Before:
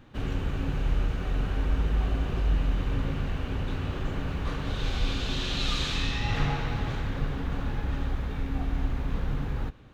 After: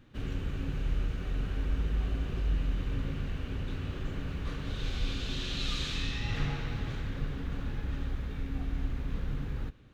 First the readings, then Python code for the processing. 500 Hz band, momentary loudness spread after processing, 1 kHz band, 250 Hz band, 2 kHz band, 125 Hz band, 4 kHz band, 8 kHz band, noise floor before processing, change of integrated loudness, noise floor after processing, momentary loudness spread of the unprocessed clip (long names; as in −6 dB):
−6.5 dB, 5 LU, −9.5 dB, −5.0 dB, −5.5 dB, −4.5 dB, −5.0 dB, can't be measured, −34 dBFS, −5.0 dB, −39 dBFS, 5 LU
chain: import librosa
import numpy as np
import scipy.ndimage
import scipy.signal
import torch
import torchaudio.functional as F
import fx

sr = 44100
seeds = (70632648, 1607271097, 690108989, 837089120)

y = fx.peak_eq(x, sr, hz=830.0, db=-7.0, octaves=1.1)
y = y * 10.0 ** (-4.5 / 20.0)